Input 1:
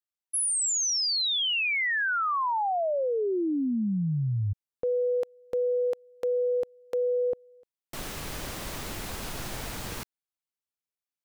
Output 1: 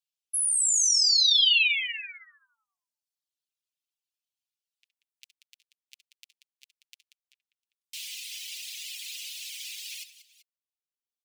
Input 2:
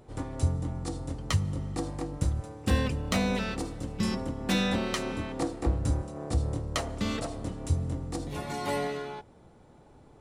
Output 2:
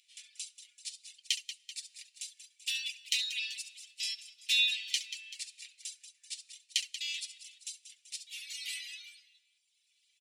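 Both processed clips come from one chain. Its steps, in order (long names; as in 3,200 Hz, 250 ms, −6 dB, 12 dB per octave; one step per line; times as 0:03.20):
Butterworth high-pass 2,500 Hz 48 dB per octave
high-shelf EQ 7,900 Hz −10 dB
comb filter 6.9 ms, depth 48%
multi-tap delay 67/71/185/385 ms −9.5/−13.5/−8.5/−14 dB
reverb reduction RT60 1.1 s
level +6.5 dB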